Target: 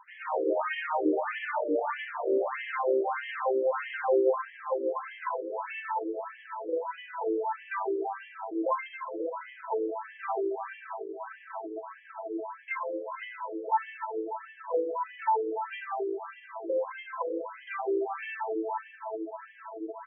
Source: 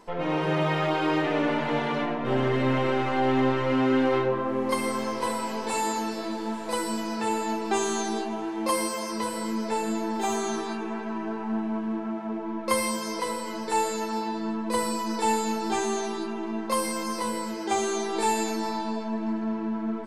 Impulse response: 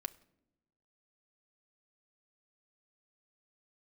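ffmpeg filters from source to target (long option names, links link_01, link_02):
-af "equalizer=frequency=3600:width_type=o:width=1.5:gain=-6,afftfilt=real='re*between(b*sr/1024,400*pow(2400/400,0.5+0.5*sin(2*PI*1.6*pts/sr))/1.41,400*pow(2400/400,0.5+0.5*sin(2*PI*1.6*pts/sr))*1.41)':imag='im*between(b*sr/1024,400*pow(2400/400,0.5+0.5*sin(2*PI*1.6*pts/sr))/1.41,400*pow(2400/400,0.5+0.5*sin(2*PI*1.6*pts/sr))*1.41)':win_size=1024:overlap=0.75,volume=3dB"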